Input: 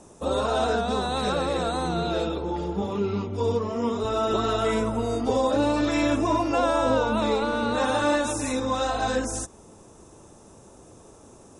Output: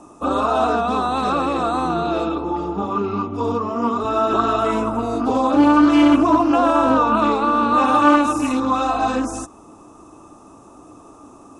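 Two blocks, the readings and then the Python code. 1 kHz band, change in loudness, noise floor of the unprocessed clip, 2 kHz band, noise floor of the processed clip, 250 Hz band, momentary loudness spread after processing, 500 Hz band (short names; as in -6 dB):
+9.5 dB, +7.0 dB, -50 dBFS, +4.5 dB, -45 dBFS, +9.5 dB, 10 LU, +3.0 dB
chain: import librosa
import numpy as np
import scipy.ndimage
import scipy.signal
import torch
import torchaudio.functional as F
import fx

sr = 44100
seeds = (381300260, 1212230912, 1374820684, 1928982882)

y = fx.band_shelf(x, sr, hz=920.0, db=8.5, octaves=1.2)
y = fx.small_body(y, sr, hz=(290.0, 1200.0, 2600.0), ring_ms=45, db=14)
y = fx.doppler_dist(y, sr, depth_ms=0.17)
y = y * librosa.db_to_amplitude(-1.5)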